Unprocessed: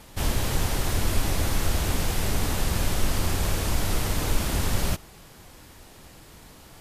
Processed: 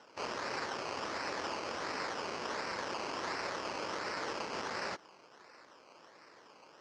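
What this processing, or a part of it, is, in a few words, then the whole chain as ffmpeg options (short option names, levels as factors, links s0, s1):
circuit-bent sampling toy: -af "acrusher=samples=19:mix=1:aa=0.000001:lfo=1:lforange=11.4:lforate=1.4,highpass=490,equalizer=f=730:t=q:w=4:g=-5,equalizer=f=3600:t=q:w=4:g=-8,equalizer=f=5200:t=q:w=4:g=6,lowpass=f=5900:w=0.5412,lowpass=f=5900:w=1.3066,volume=0.631"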